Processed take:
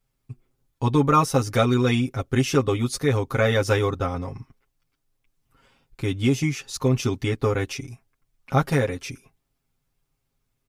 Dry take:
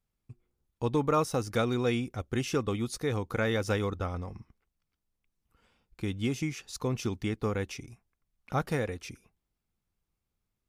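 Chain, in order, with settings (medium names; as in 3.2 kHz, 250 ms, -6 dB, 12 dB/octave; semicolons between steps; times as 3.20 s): comb 7.4 ms, depth 97%; trim +5.5 dB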